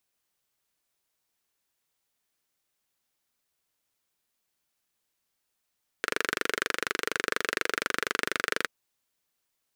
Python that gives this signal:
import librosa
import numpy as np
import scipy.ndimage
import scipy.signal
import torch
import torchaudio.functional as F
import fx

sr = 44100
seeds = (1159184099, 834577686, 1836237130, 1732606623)

y = fx.engine_single(sr, seeds[0], length_s=2.63, rpm=2900, resonances_hz=(440.0, 1500.0))